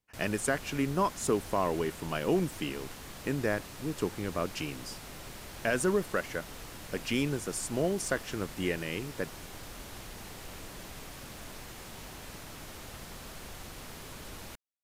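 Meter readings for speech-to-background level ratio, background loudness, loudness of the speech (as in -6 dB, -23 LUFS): 12.0 dB, -44.5 LUFS, -32.5 LUFS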